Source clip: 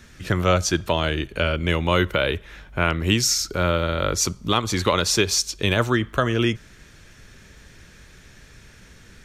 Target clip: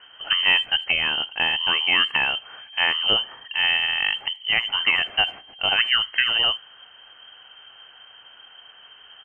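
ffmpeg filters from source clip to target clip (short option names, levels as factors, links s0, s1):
-filter_complex "[0:a]lowpass=f=2700:t=q:w=0.5098,lowpass=f=2700:t=q:w=0.6013,lowpass=f=2700:t=q:w=0.9,lowpass=f=2700:t=q:w=2.563,afreqshift=-3200,asplit=2[s0][s1];[s1]adelay=80,highpass=300,lowpass=3400,asoftclip=type=hard:threshold=0.158,volume=0.0355[s2];[s0][s2]amix=inputs=2:normalize=0"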